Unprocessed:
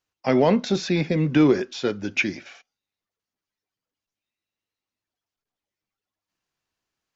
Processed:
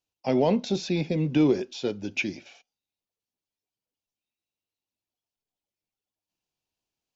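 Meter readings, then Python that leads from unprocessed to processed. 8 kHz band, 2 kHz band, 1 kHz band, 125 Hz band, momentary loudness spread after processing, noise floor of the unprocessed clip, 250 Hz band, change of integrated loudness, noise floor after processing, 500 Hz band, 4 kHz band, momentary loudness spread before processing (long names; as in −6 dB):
can't be measured, −7.0 dB, −5.5 dB, −4.0 dB, 9 LU, below −85 dBFS, −4.0 dB, −4.0 dB, below −85 dBFS, −4.0 dB, −4.0 dB, 9 LU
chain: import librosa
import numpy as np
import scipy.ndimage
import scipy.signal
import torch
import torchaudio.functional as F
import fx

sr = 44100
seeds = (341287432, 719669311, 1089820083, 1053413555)

y = fx.band_shelf(x, sr, hz=1500.0, db=-9.0, octaves=1.1)
y = F.gain(torch.from_numpy(y), -4.0).numpy()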